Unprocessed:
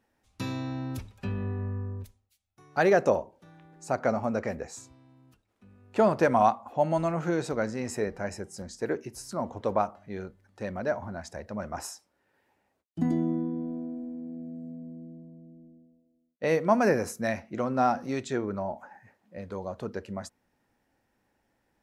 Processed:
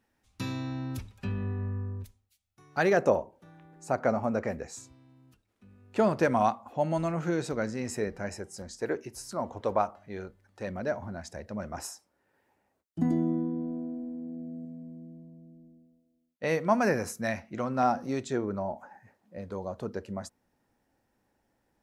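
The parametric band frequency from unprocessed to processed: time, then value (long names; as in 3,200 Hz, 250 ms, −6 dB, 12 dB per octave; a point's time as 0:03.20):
parametric band −4 dB 1.6 octaves
590 Hz
from 0:02.97 4,500 Hz
from 0:04.55 800 Hz
from 0:08.29 180 Hz
from 0:10.67 980 Hz
from 0:11.88 3,300 Hz
from 0:14.65 410 Hz
from 0:17.83 2,300 Hz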